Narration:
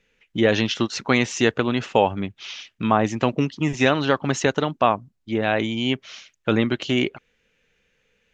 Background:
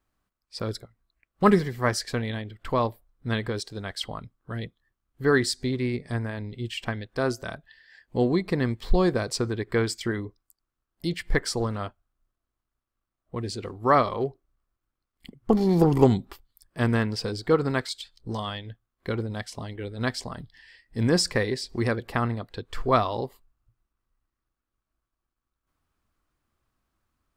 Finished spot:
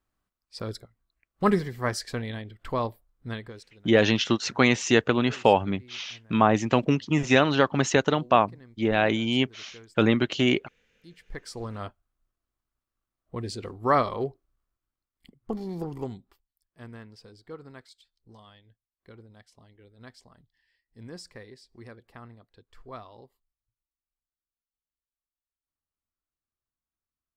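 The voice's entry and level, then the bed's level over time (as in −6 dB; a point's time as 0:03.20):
3.50 s, −1.0 dB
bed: 0:03.20 −3.5 dB
0:03.94 −25.5 dB
0:10.94 −25.5 dB
0:11.89 −2 dB
0:14.57 −2 dB
0:16.47 −20.5 dB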